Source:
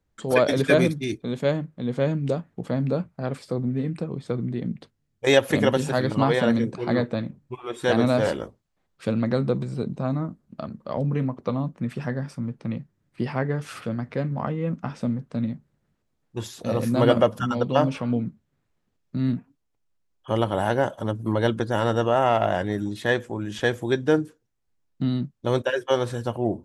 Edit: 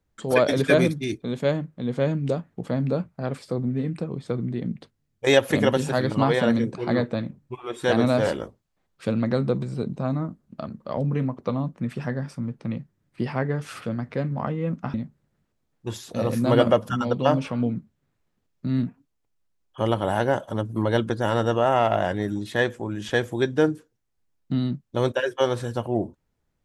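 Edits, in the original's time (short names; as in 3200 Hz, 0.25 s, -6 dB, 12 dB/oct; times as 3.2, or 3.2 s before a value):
14.94–15.44 cut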